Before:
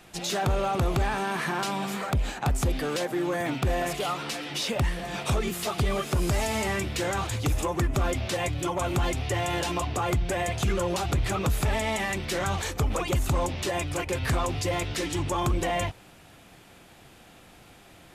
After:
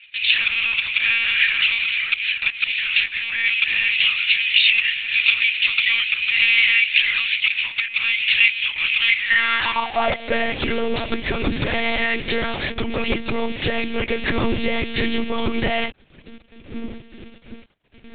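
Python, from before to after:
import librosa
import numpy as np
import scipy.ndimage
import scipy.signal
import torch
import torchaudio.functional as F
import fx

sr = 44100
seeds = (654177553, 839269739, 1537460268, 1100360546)

y = fx.dmg_wind(x, sr, seeds[0], corner_hz=110.0, level_db=-34.0)
y = fx.high_shelf_res(y, sr, hz=1500.0, db=7.0, q=1.5)
y = np.sign(y) * np.maximum(np.abs(y) - 10.0 ** (-40.0 / 20.0), 0.0)
y = fx.filter_sweep_highpass(y, sr, from_hz=2500.0, to_hz=280.0, start_s=9.04, end_s=10.68, q=4.8)
y = fx.lpc_monotone(y, sr, seeds[1], pitch_hz=230.0, order=10)
y = F.gain(torch.from_numpy(y), 4.0).numpy()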